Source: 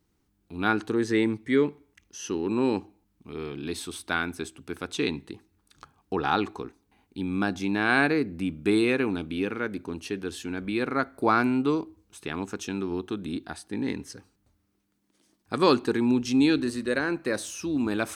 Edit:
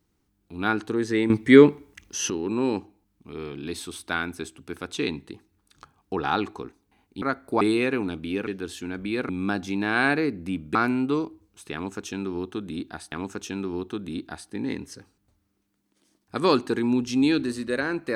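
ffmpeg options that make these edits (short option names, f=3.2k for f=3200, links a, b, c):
-filter_complex "[0:a]asplit=9[a][b][c][d][e][f][g][h][i];[a]atrim=end=1.302[j];[b]atrim=start=1.298:end=2.302,asetpts=PTS-STARTPTS,volume=10.5dB[k];[c]atrim=start=2.298:end=7.222[l];[d]atrim=start=10.918:end=11.312[m];[e]atrim=start=8.678:end=9.542[n];[f]atrim=start=10.098:end=10.922[o];[g]atrim=start=7.218:end=8.682[p];[h]atrim=start=11.308:end=13.682[q];[i]atrim=start=12.298[r];[j][k]acrossfade=d=0.004:c1=hsin:c2=hsin[s];[s][l]acrossfade=d=0.004:c1=hsin:c2=hsin[t];[t][m]acrossfade=d=0.004:c1=hsin:c2=hsin[u];[u][n]acrossfade=d=0.004:c1=hsin:c2=hsin[v];[v][o]acrossfade=d=0.004:c1=hsin:c2=hsin[w];[w][p]acrossfade=d=0.004:c1=hsin:c2=hsin[x];[x][q]acrossfade=d=0.004:c1=hsin:c2=hsin[y];[y][r]acrossfade=d=0.004:c1=hsin:c2=hsin"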